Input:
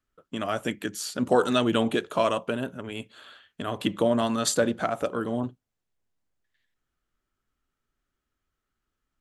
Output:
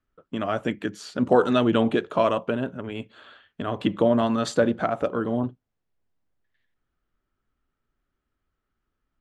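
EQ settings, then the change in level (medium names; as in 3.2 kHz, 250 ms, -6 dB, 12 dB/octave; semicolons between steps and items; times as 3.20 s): tape spacing loss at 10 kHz 20 dB; +4.0 dB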